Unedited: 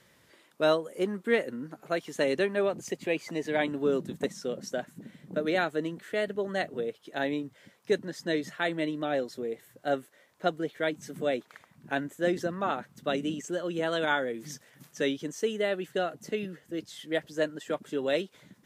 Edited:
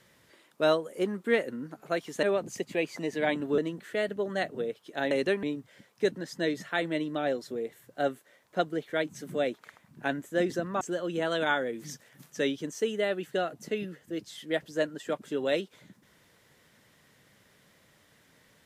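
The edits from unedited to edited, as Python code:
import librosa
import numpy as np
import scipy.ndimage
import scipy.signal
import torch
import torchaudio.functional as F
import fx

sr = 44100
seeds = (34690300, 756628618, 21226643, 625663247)

y = fx.edit(x, sr, fx.move(start_s=2.23, length_s=0.32, to_s=7.3),
    fx.cut(start_s=3.9, length_s=1.87),
    fx.cut(start_s=12.68, length_s=0.74), tone=tone)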